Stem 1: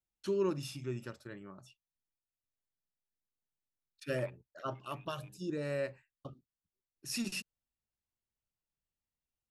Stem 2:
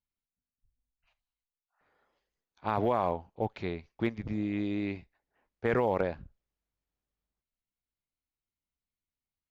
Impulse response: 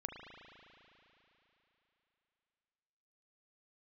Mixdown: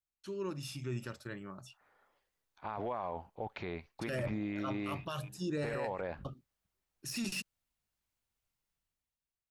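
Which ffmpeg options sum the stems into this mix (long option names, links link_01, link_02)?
-filter_complex "[0:a]deesser=1,volume=-6.5dB[link_01];[1:a]highshelf=frequency=3100:gain=-11,alimiter=limit=-22dB:level=0:latency=1:release=96,lowshelf=frequency=320:gain=-9,volume=-6dB[link_02];[link_01][link_02]amix=inputs=2:normalize=0,equalizer=frequency=380:width_type=o:width=1.8:gain=-3.5,dynaudnorm=framelen=110:gausssize=13:maxgain=12dB,alimiter=level_in=4.5dB:limit=-24dB:level=0:latency=1:release=13,volume=-4.5dB"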